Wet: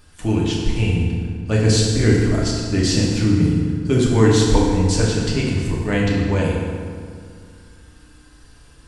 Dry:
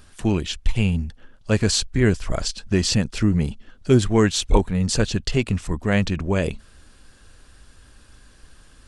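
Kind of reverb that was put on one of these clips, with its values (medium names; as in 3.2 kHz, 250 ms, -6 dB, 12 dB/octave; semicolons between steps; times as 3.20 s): FDN reverb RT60 2.1 s, low-frequency decay 1.25×, high-frequency decay 0.65×, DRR -4.5 dB; trim -3.5 dB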